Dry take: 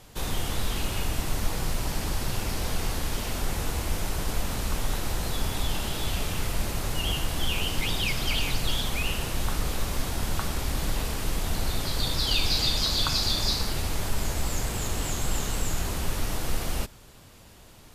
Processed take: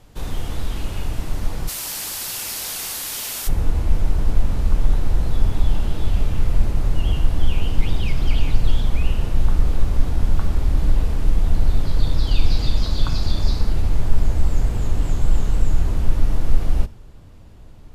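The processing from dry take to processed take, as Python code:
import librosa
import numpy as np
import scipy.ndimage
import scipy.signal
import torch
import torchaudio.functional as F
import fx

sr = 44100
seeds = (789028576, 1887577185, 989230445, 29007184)

y = fx.tilt_eq(x, sr, slope=fx.steps((0.0, -1.5), (1.67, 4.0), (3.47, -3.0)))
y = fx.rev_fdn(y, sr, rt60_s=0.68, lf_ratio=1.0, hf_ratio=0.95, size_ms=20.0, drr_db=15.0)
y = F.gain(torch.from_numpy(y), -2.0).numpy()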